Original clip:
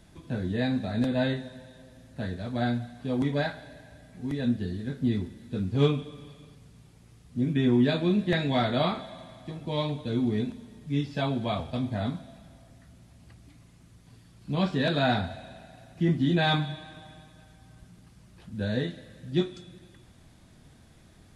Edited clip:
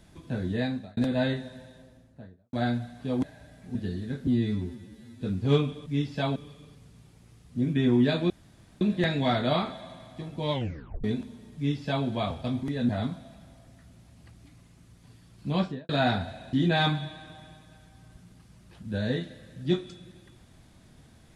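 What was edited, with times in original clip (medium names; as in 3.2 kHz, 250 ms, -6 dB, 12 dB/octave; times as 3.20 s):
0.58–0.97 s: fade out
1.60–2.53 s: studio fade out
3.23–3.74 s: delete
4.26–4.52 s: move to 11.92 s
5.04–5.51 s: stretch 2×
8.10 s: insert room tone 0.51 s
9.80 s: tape stop 0.53 s
10.85–11.35 s: copy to 6.16 s
14.59–14.92 s: studio fade out
15.56–16.20 s: delete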